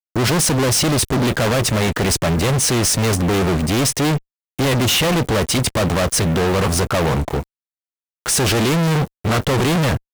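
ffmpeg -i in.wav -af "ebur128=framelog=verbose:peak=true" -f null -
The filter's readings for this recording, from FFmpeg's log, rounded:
Integrated loudness:
  I:         -17.4 LUFS
  Threshold: -27.5 LUFS
Loudness range:
  LRA:         2.4 LU
  Threshold: -37.9 LUFS
  LRA low:   -19.2 LUFS
  LRA high:  -16.8 LUFS
True peak:
  Peak:      -10.4 dBFS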